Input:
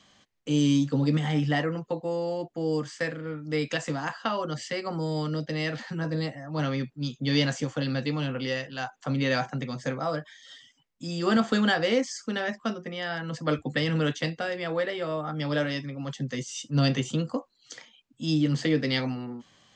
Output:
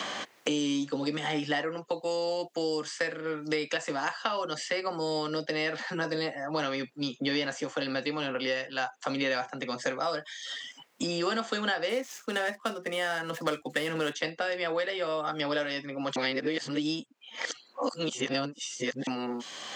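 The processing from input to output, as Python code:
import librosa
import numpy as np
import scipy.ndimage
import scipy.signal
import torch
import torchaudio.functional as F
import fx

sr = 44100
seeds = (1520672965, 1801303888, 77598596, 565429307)

y = fx.median_filter(x, sr, points=9, at=(11.89, 14.13))
y = fx.edit(y, sr, fx.reverse_span(start_s=16.16, length_s=2.91), tone=tone)
y = scipy.signal.sosfilt(scipy.signal.butter(2, 380.0, 'highpass', fs=sr, output='sos'), y)
y = fx.band_squash(y, sr, depth_pct=100)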